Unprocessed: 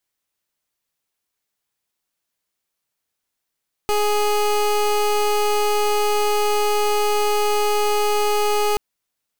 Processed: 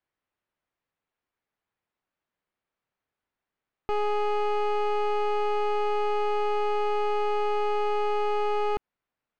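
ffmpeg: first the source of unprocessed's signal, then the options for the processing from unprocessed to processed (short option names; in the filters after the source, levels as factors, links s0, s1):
-f lavfi -i "aevalsrc='0.119*(2*lt(mod(417*t,1),0.23)-1)':d=4.88:s=44100"
-af "lowpass=2000,alimiter=limit=0.0631:level=0:latency=1:release=91"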